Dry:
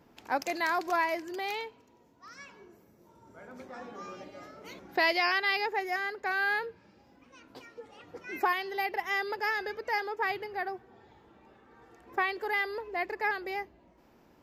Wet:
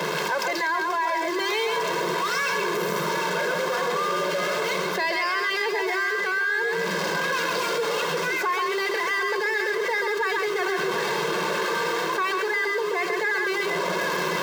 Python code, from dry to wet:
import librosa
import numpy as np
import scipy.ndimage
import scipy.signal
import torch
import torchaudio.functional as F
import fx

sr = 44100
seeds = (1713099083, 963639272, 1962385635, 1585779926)

p1 = x + 0.5 * 10.0 ** (-30.0 / 20.0) * np.sign(x)
p2 = scipy.signal.sosfilt(scipy.signal.butter(16, 150.0, 'highpass', fs=sr, output='sos'), p1)
p3 = fx.high_shelf(p2, sr, hz=6300.0, db=-12.0)
p4 = fx.hum_notches(p3, sr, base_hz=50, count=8)
p5 = p4 + 0.93 * np.pad(p4, (int(1.9 * sr / 1000.0), 0))[:len(p4)]
p6 = p5 + fx.echo_single(p5, sr, ms=133, db=-5.5, dry=0)
p7 = fx.rider(p6, sr, range_db=5, speed_s=0.5)
p8 = fx.graphic_eq_15(p7, sr, hz=(250, 630, 2500, 10000), db=(-8, -7, -4, -4))
p9 = fx.echo_multitap(p8, sr, ms=(752, 755), db=(-13.5, -16.5))
y = fx.env_flatten(p9, sr, amount_pct=70)